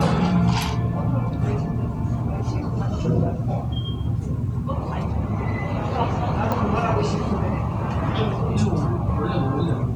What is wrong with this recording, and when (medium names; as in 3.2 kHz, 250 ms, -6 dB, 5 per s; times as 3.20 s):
6.52 s: pop -12 dBFS